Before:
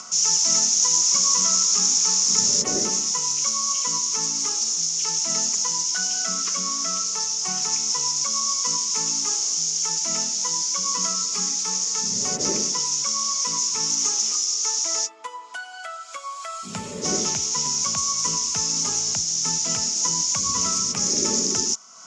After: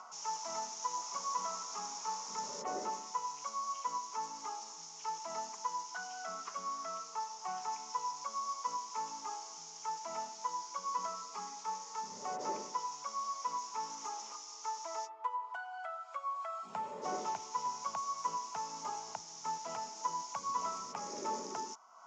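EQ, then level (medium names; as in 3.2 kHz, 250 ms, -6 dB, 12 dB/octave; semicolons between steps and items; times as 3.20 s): band-pass filter 870 Hz, Q 3.2; +1.0 dB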